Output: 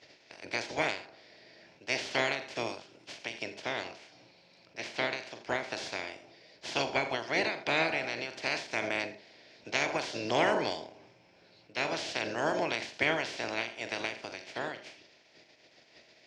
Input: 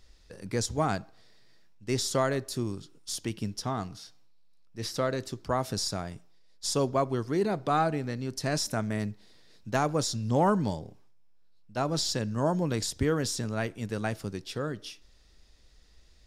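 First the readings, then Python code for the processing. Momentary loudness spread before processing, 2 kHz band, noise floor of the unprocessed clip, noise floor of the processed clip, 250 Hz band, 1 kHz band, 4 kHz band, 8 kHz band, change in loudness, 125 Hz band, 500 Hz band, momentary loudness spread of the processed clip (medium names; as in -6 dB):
12 LU, +7.5 dB, -58 dBFS, -62 dBFS, -9.0 dB, -3.5 dB, -0.5 dB, -10.0 dB, -2.5 dB, -16.0 dB, -3.5 dB, 16 LU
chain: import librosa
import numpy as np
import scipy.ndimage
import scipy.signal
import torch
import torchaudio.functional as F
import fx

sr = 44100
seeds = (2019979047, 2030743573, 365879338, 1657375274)

p1 = fx.spec_clip(x, sr, under_db=30)
p2 = fx.cabinet(p1, sr, low_hz=140.0, low_slope=12, high_hz=5100.0, hz=(190.0, 340.0, 640.0, 1200.0, 2300.0, 3800.0), db=(-6, 3, 7, -9, 6, -4))
p3 = p2 + fx.echo_multitap(p2, sr, ms=(43, 78, 83), db=(-12.5, -18.5, -19.0), dry=0)
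p4 = fx.end_taper(p3, sr, db_per_s=120.0)
y = F.gain(torch.from_numpy(p4), -3.0).numpy()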